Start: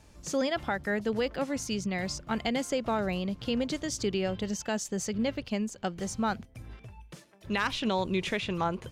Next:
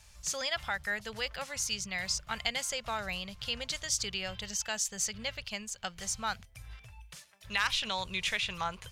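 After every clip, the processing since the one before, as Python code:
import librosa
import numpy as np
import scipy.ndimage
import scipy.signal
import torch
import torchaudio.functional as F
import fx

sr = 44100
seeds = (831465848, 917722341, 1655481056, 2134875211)

y = fx.tone_stack(x, sr, knobs='10-0-10')
y = y * 10.0 ** (6.0 / 20.0)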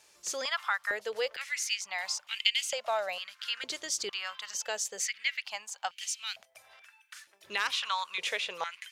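y = fx.filter_held_highpass(x, sr, hz=2.2, low_hz=350.0, high_hz=2700.0)
y = y * 10.0 ** (-1.5 / 20.0)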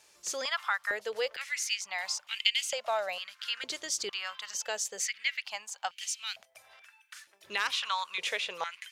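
y = x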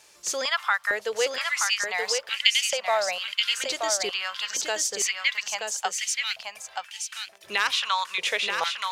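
y = x + 10.0 ** (-5.0 / 20.0) * np.pad(x, (int(927 * sr / 1000.0), 0))[:len(x)]
y = y * 10.0 ** (6.5 / 20.0)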